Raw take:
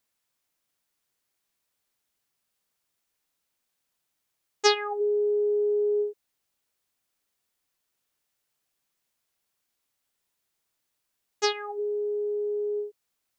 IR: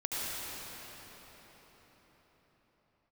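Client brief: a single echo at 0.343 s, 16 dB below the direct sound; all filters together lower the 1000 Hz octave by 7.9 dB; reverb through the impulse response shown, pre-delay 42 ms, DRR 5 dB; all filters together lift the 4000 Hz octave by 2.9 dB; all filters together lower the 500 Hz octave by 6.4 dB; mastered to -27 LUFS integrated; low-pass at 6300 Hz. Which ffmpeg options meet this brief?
-filter_complex "[0:a]lowpass=6.3k,equalizer=f=500:t=o:g=-7,equalizer=f=1k:t=o:g=-8.5,equalizer=f=4k:t=o:g=5,aecho=1:1:343:0.158,asplit=2[a][b];[1:a]atrim=start_sample=2205,adelay=42[c];[b][c]afir=irnorm=-1:irlink=0,volume=-12dB[d];[a][d]amix=inputs=2:normalize=0,volume=4.5dB"

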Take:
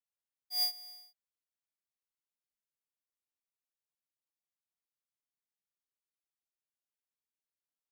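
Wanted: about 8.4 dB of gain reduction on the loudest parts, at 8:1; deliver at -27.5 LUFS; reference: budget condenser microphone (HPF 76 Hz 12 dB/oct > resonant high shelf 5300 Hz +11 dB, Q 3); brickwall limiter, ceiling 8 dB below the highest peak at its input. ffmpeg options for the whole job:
-af "acompressor=threshold=-38dB:ratio=8,alimiter=level_in=20.5dB:limit=-24dB:level=0:latency=1,volume=-20.5dB,highpass=76,highshelf=f=5.3k:t=q:w=3:g=11,volume=13.5dB"

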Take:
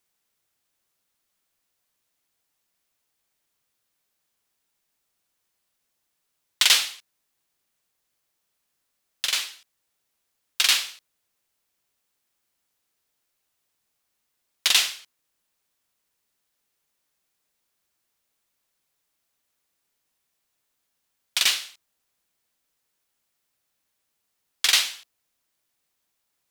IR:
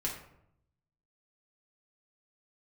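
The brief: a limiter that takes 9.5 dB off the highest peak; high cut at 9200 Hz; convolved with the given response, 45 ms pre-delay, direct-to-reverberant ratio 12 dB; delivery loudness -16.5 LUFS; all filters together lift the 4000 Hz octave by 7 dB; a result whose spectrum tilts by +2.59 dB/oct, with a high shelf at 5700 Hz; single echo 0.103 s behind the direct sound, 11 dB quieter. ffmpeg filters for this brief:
-filter_complex "[0:a]lowpass=9.2k,equalizer=f=4k:t=o:g=6,highshelf=f=5.7k:g=7.5,alimiter=limit=-6.5dB:level=0:latency=1,aecho=1:1:103:0.282,asplit=2[a][b];[1:a]atrim=start_sample=2205,adelay=45[c];[b][c]afir=irnorm=-1:irlink=0,volume=-15dB[d];[a][d]amix=inputs=2:normalize=0,volume=3.5dB"

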